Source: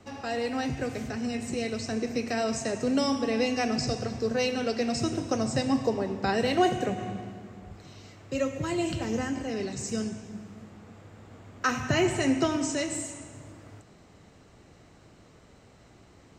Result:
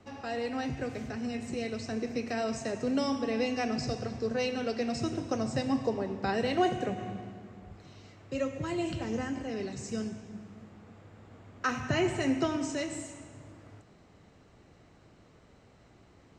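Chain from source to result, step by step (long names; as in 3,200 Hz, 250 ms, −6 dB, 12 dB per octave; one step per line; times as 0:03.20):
high-shelf EQ 8,300 Hz −12 dB
level −3.5 dB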